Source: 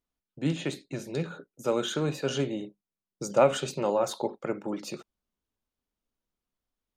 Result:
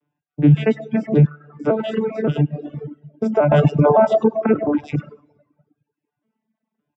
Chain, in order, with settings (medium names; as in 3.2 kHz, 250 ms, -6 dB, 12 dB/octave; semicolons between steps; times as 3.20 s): vocoder on a broken chord bare fifth, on D3, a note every 566 ms; delay 101 ms -7 dB; plate-style reverb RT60 1.3 s, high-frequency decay 0.85×, DRR 4.5 dB; 1.26–3.52 s: compression 2.5:1, threshold -38 dBFS, peak gain reduction 12.5 dB; reverb removal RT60 0.68 s; Savitzky-Golay filter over 25 samples; reverb removal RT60 0.96 s; loudness maximiser +24 dB; trim -4 dB